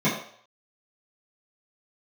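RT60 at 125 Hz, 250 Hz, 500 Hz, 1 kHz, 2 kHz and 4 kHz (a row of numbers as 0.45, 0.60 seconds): 0.35, 0.40, 0.55, 0.55, 0.55, 0.60 seconds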